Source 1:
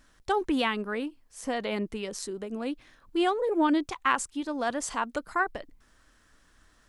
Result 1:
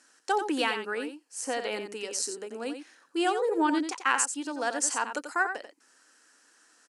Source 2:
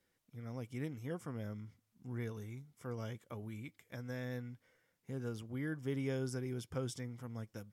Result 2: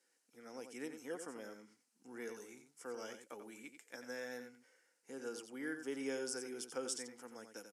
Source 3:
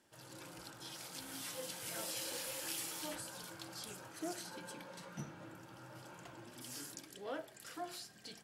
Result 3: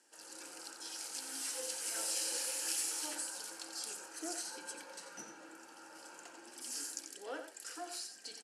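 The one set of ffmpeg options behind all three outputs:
-af "highpass=f=330:w=0.5412,highpass=f=330:w=1.3066,equalizer=f=380:t=q:w=4:g=-6,equalizer=f=620:t=q:w=4:g=-9,equalizer=f=1.1k:t=q:w=4:g=-8,equalizer=f=2.1k:t=q:w=4:g=-6,equalizer=f=3.5k:t=q:w=4:g=-10,lowpass=f=9.7k:w=0.5412,lowpass=f=9.7k:w=1.3066,crystalizer=i=1:c=0,aecho=1:1:89:0.376,volume=4dB"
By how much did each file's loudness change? 0.0, -3.0, +5.5 LU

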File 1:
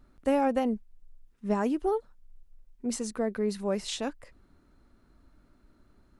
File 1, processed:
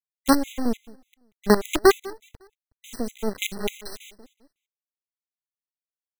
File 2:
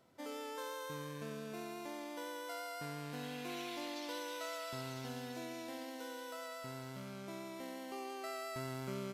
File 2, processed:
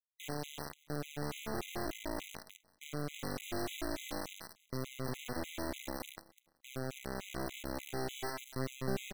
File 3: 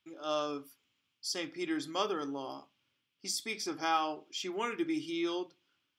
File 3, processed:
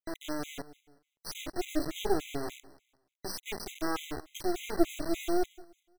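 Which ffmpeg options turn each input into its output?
-filter_complex "[0:a]agate=range=-33dB:threshold=-50dB:ratio=3:detection=peak,lowshelf=f=500:t=q:w=3:g=8,acrusher=bits=3:dc=4:mix=0:aa=0.000001,asplit=2[a][b];[b]aecho=0:1:185|370|555:0.0944|0.0321|0.0109[c];[a][c]amix=inputs=2:normalize=0,afftfilt=real='re*gt(sin(2*PI*3.4*pts/sr)*(1-2*mod(floor(b*sr/1024/2000),2)),0)':imag='im*gt(sin(2*PI*3.4*pts/sr)*(1-2*mod(floor(b*sr/1024/2000),2)),0)':win_size=1024:overlap=0.75"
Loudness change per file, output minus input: +6.5, +2.5, +0.5 LU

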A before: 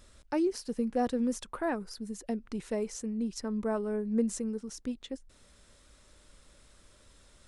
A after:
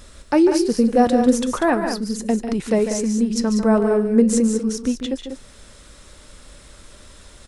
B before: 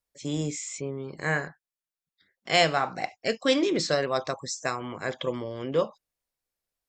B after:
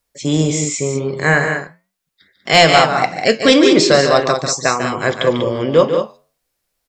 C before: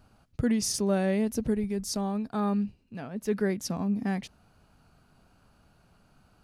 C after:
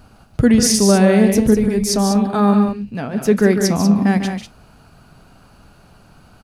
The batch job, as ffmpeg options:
-af "flanger=delay=4:depth=6.9:regen=-84:speed=0.42:shape=triangular,aecho=1:1:145.8|192.4:0.355|0.398,apsyclip=19.5dB,volume=-1.5dB"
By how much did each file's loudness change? +14.5, +14.0, +14.0 LU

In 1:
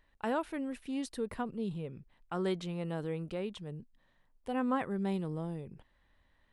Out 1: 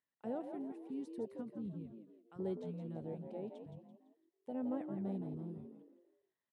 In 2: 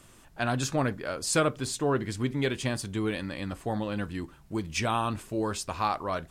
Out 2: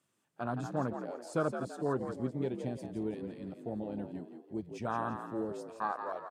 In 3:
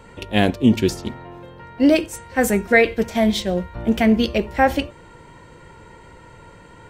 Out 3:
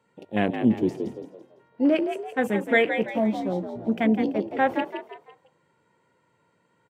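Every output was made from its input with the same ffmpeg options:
-filter_complex "[0:a]highpass=f=120:w=0.5412,highpass=f=120:w=1.3066,afwtdn=0.0501,asplit=2[a][b];[b]asplit=4[c][d][e][f];[c]adelay=168,afreqshift=59,volume=-8dB[g];[d]adelay=336,afreqshift=118,volume=-16.2dB[h];[e]adelay=504,afreqshift=177,volume=-24.4dB[i];[f]adelay=672,afreqshift=236,volume=-32.5dB[j];[g][h][i][j]amix=inputs=4:normalize=0[k];[a][k]amix=inputs=2:normalize=0,volume=-6dB"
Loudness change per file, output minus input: -7.0, -7.0, -6.0 LU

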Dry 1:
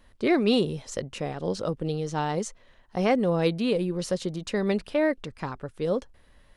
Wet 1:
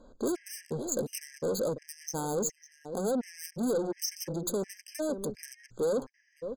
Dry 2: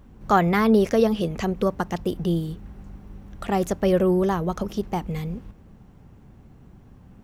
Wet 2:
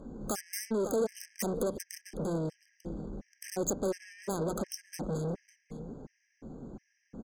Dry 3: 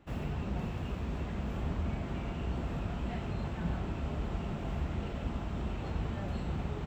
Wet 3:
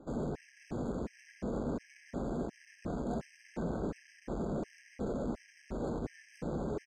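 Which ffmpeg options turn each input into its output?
-af "equalizer=f=83:t=o:w=0.26:g=-14.5,acompressor=threshold=-23dB:ratio=20,aresample=16000,volume=20.5dB,asoftclip=hard,volume=-20.5dB,aresample=44100,adynamicsmooth=sensitivity=5.5:basefreq=3.5k,aecho=1:1:552:0.119,asoftclip=type=tanh:threshold=-37dB,equalizer=f=250:t=o:w=1:g=8,equalizer=f=500:t=o:w=1:g=11,equalizer=f=2k:t=o:w=1:g=3,equalizer=f=4k:t=o:w=1:g=-9,aeval=exprs='0.0794*(cos(1*acos(clip(val(0)/0.0794,-1,1)))-cos(1*PI/2))+0.00141*(cos(8*acos(clip(val(0)/0.0794,-1,1)))-cos(8*PI/2))':c=same,bandreject=f=60:t=h:w=6,bandreject=f=120:t=h:w=6,bandreject=f=180:t=h:w=6,aexciter=amount=11.2:drive=7.1:freq=4.5k,afftfilt=real='re*gt(sin(2*PI*1.4*pts/sr)*(1-2*mod(floor(b*sr/1024/1600),2)),0)':imag='im*gt(sin(2*PI*1.4*pts/sr)*(1-2*mod(floor(b*sr/1024/1600),2)),0)':win_size=1024:overlap=0.75"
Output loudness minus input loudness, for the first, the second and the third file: -6.0, -12.5, -2.5 LU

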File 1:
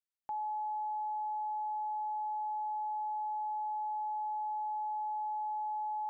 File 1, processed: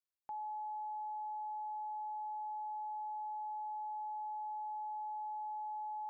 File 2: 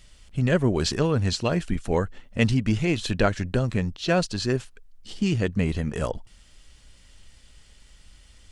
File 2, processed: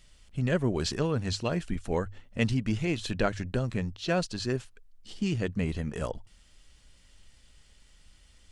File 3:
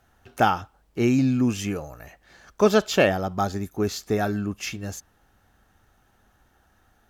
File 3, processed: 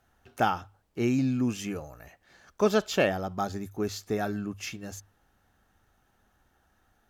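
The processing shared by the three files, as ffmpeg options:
-af "bandreject=f=50:t=h:w=6,bandreject=f=100:t=h:w=6,volume=-5.5dB"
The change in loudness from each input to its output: -5.5, -5.5, -5.5 LU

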